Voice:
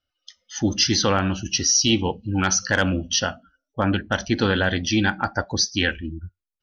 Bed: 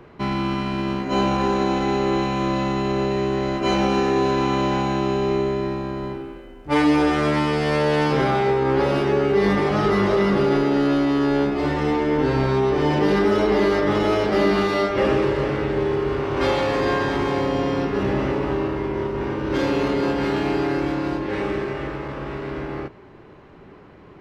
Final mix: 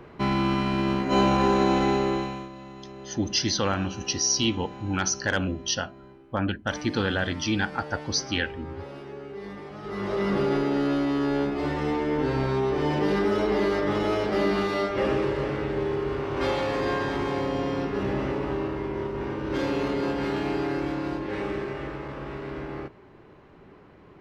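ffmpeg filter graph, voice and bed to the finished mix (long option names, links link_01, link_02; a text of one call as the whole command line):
ffmpeg -i stem1.wav -i stem2.wav -filter_complex "[0:a]adelay=2550,volume=-5.5dB[link_01];[1:a]volume=14dB,afade=type=out:start_time=1.83:duration=0.66:silence=0.105925,afade=type=in:start_time=9.82:duration=0.53:silence=0.188365[link_02];[link_01][link_02]amix=inputs=2:normalize=0" out.wav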